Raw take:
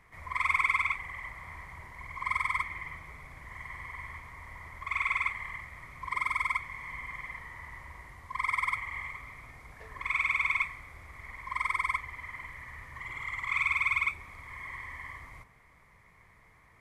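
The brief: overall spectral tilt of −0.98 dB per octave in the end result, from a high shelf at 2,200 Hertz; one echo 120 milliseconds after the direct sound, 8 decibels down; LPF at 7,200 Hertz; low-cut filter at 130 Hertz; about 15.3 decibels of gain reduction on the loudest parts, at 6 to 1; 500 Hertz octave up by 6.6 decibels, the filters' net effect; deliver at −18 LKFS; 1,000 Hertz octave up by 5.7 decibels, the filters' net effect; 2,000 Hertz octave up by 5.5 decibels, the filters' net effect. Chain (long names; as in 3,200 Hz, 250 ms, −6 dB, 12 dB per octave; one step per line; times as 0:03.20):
high-pass filter 130 Hz
low-pass filter 7,200 Hz
parametric band 500 Hz +7 dB
parametric band 1,000 Hz +4 dB
parametric band 2,000 Hz +8 dB
high-shelf EQ 2,200 Hz −5.5 dB
downward compressor 6 to 1, threshold −35 dBFS
single-tap delay 120 ms −8 dB
level +19.5 dB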